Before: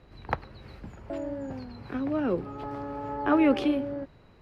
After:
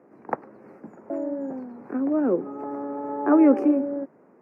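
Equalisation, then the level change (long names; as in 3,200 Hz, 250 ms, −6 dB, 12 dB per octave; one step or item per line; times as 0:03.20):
high-pass filter 230 Hz 24 dB per octave
Butterworth band-reject 3,600 Hz, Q 0.9
tilt shelving filter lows +7.5 dB, about 1,200 Hz
0.0 dB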